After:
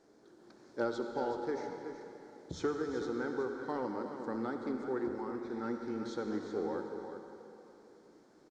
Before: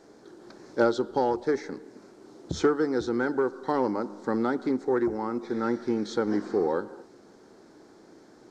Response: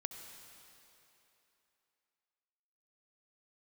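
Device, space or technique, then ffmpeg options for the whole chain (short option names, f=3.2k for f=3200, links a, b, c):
cave: -filter_complex "[0:a]aecho=1:1:374:0.316[a];[1:a]atrim=start_sample=2205[b];[a][b]afir=irnorm=-1:irlink=0,volume=-8.5dB"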